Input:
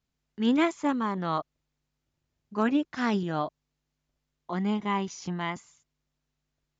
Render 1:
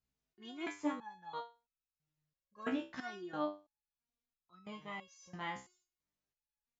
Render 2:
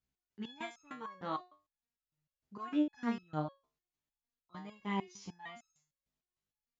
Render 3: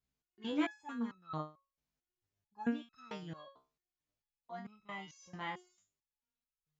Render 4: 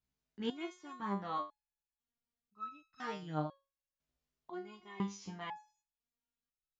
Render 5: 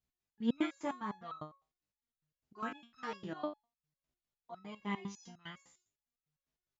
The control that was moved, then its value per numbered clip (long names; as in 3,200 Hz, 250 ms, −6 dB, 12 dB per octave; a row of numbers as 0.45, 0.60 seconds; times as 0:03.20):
step-sequenced resonator, speed: 3, 6.6, 4.5, 2, 9.9 Hertz